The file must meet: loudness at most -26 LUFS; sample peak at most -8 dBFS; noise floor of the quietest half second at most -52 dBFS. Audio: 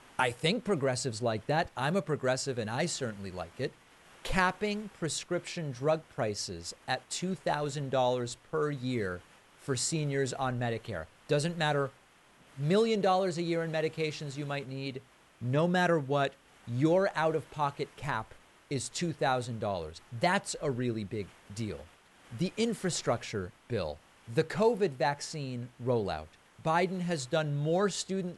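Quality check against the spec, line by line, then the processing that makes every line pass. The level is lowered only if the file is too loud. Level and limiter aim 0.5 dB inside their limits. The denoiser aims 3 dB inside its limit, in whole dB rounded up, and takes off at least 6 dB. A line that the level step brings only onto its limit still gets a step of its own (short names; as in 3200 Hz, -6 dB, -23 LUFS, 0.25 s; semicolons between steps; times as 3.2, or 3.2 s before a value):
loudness -32.0 LUFS: OK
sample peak -13.0 dBFS: OK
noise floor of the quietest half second -61 dBFS: OK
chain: none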